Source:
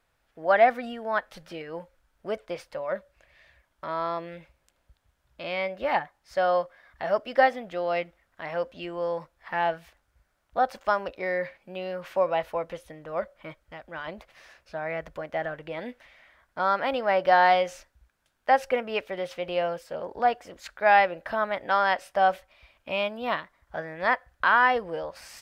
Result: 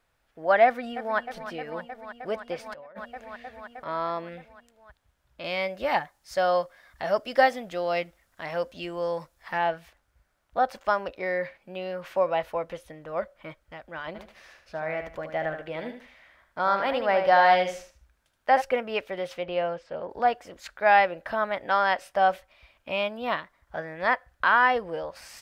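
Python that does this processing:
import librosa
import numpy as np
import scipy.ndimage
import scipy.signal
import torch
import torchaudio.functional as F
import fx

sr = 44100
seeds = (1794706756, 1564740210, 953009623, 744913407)

y = fx.echo_throw(x, sr, start_s=0.65, length_s=0.54, ms=310, feedback_pct=85, wet_db=-12.0)
y = fx.over_compress(y, sr, threshold_db=-41.0, ratio=-1.0, at=(2.66, 3.86))
y = fx.bass_treble(y, sr, bass_db=2, treble_db=10, at=(5.44, 9.58))
y = fx.echo_feedback(y, sr, ms=76, feedback_pct=26, wet_db=-7.5, at=(14.14, 18.6), fade=0.02)
y = fx.air_absorb(y, sr, metres=140.0, at=(19.43, 20.1))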